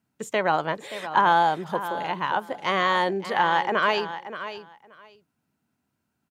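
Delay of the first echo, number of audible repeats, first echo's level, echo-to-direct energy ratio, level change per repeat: 577 ms, 2, -12.0 dB, -12.0 dB, -16.0 dB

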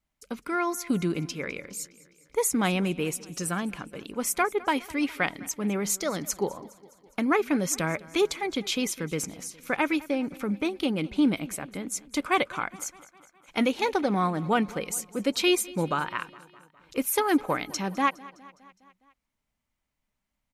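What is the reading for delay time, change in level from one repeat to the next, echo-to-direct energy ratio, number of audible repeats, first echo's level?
206 ms, -4.5 dB, -19.0 dB, 4, -21.0 dB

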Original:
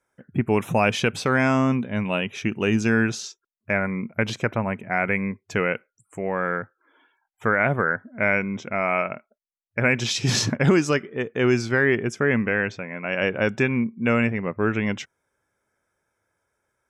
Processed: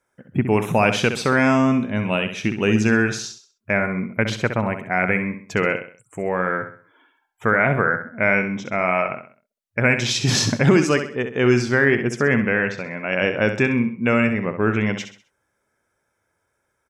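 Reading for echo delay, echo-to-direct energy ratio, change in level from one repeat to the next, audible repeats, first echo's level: 65 ms, -8.5 dB, -8.5 dB, 4, -9.0 dB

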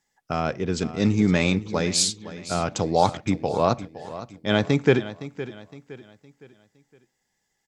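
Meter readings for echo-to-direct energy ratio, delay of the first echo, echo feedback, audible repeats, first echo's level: -14.0 dB, 513 ms, 39%, 3, -14.5 dB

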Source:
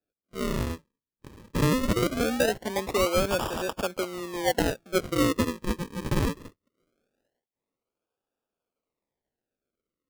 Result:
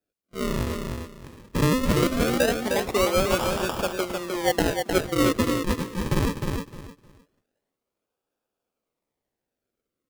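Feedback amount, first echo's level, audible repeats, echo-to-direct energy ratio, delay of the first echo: 22%, -5.0 dB, 3, -5.0 dB, 308 ms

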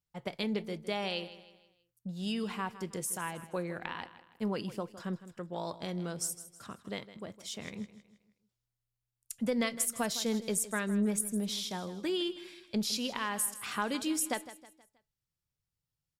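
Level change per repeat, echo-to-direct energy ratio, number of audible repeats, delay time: -7.5 dB, -14.0 dB, 3, 159 ms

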